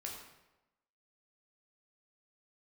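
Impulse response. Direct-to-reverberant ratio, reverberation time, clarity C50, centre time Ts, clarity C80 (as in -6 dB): -1.5 dB, 1.0 s, 3.5 dB, 46 ms, 5.5 dB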